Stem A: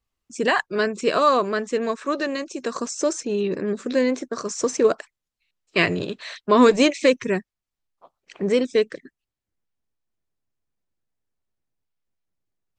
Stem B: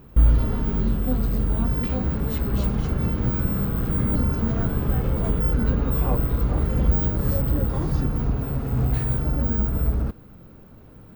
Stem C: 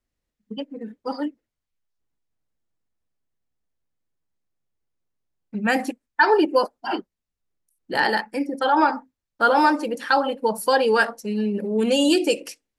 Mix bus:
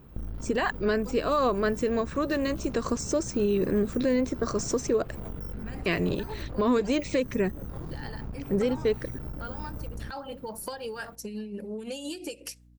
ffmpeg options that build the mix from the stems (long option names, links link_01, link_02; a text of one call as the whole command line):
ffmpeg -i stem1.wav -i stem2.wav -i stem3.wav -filter_complex "[0:a]lowshelf=frequency=500:gain=6.5,aeval=exprs='val(0)+0.00251*(sin(2*PI*60*n/s)+sin(2*PI*2*60*n/s)/2+sin(2*PI*3*60*n/s)/3+sin(2*PI*4*60*n/s)/4+sin(2*PI*5*60*n/s)/5)':channel_layout=same,adelay=100,volume=-3dB[link_01];[1:a]aeval=exprs='0.501*(cos(1*acos(clip(val(0)/0.501,-1,1)))-cos(1*PI/2))+0.158*(cos(4*acos(clip(val(0)/0.501,-1,1)))-cos(4*PI/2))':channel_layout=same,volume=-4.5dB[link_02];[2:a]highshelf=frequency=4200:gain=8,acompressor=threshold=-28dB:ratio=4,tremolo=f=5.7:d=0.6,volume=0.5dB,asplit=2[link_03][link_04];[link_04]apad=whole_len=568118[link_05];[link_01][link_05]sidechaincompress=threshold=-32dB:ratio=8:attack=24:release=390[link_06];[link_02][link_03]amix=inputs=2:normalize=0,asoftclip=type=tanh:threshold=-16dB,acompressor=threshold=-33dB:ratio=6,volume=0dB[link_07];[link_06][link_07]amix=inputs=2:normalize=0,alimiter=limit=-16.5dB:level=0:latency=1:release=214" out.wav